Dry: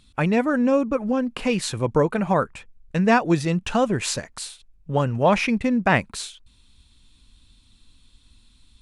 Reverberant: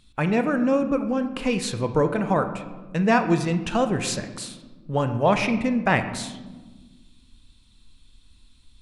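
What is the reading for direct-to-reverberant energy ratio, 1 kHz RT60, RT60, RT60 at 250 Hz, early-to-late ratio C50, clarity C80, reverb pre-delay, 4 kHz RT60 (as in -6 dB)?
8.0 dB, 1.2 s, 1.4 s, 2.2 s, 10.0 dB, 12.0 dB, 25 ms, 0.75 s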